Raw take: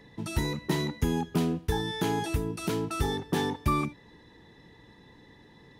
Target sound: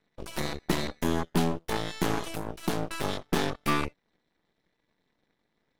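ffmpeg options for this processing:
-af "lowshelf=f=130:t=q:w=1.5:g=-10.5,aeval=exprs='0.224*(cos(1*acos(clip(val(0)/0.224,-1,1)))-cos(1*PI/2))+0.00355*(cos(3*acos(clip(val(0)/0.224,-1,1)))-cos(3*PI/2))+0.00398*(cos(5*acos(clip(val(0)/0.224,-1,1)))-cos(5*PI/2))+0.0316*(cos(7*acos(clip(val(0)/0.224,-1,1)))-cos(7*PI/2))+0.0316*(cos(8*acos(clip(val(0)/0.224,-1,1)))-cos(8*PI/2))':c=same"

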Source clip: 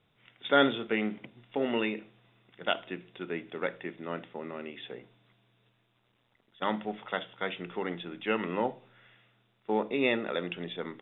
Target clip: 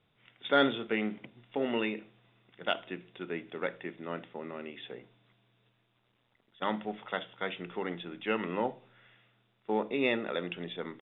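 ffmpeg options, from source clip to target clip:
-af "acontrast=37,aresample=11025,aresample=44100,volume=-7dB"

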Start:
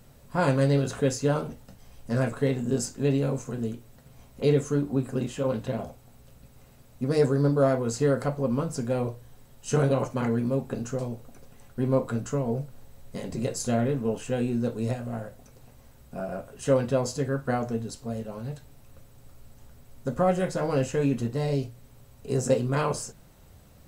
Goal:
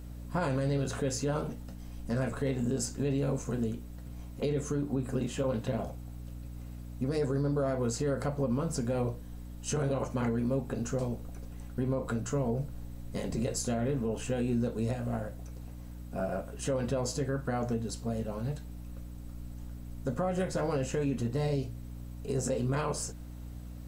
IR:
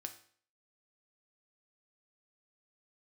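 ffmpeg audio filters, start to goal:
-af "alimiter=limit=-22.5dB:level=0:latency=1:release=123,aeval=exprs='val(0)+0.00794*(sin(2*PI*60*n/s)+sin(2*PI*2*60*n/s)/2+sin(2*PI*3*60*n/s)/3+sin(2*PI*4*60*n/s)/4+sin(2*PI*5*60*n/s)/5)':c=same"

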